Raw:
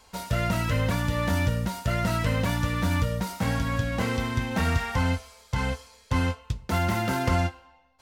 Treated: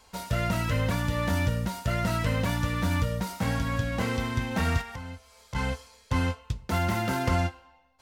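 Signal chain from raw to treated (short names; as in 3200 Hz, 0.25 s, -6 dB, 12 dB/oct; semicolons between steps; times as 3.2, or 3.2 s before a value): 4.81–5.55 compressor 4:1, threshold -37 dBFS, peak gain reduction 14 dB; gain -1.5 dB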